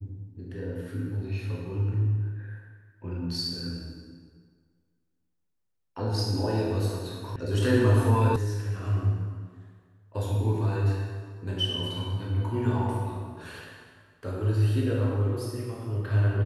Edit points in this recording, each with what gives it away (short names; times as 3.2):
7.36 sound cut off
8.36 sound cut off